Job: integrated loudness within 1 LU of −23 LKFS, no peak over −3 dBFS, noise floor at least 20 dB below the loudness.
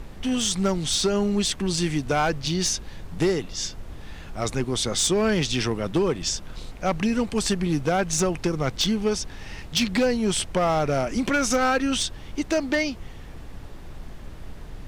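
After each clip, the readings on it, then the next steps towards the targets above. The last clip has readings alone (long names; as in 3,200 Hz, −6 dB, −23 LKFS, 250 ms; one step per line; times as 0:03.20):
share of clipped samples 1.1%; peaks flattened at −16.0 dBFS; background noise floor −40 dBFS; target noise floor −45 dBFS; integrated loudness −24.5 LKFS; sample peak −16.0 dBFS; target loudness −23.0 LKFS
→ clipped peaks rebuilt −16 dBFS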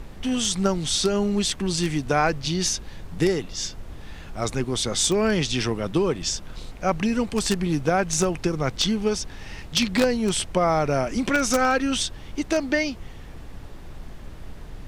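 share of clipped samples 0.0%; background noise floor −40 dBFS; target noise floor −44 dBFS
→ noise reduction from a noise print 6 dB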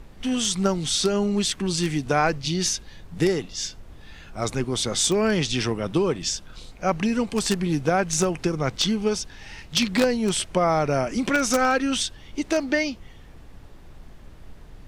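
background noise floor −46 dBFS; integrated loudness −24.0 LKFS; sample peak −7.0 dBFS; target loudness −23.0 LKFS
→ level +1 dB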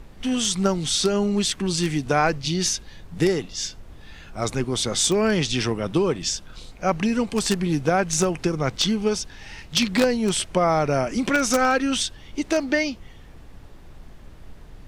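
integrated loudness −23.0 LKFS; sample peak −6.0 dBFS; background noise floor −45 dBFS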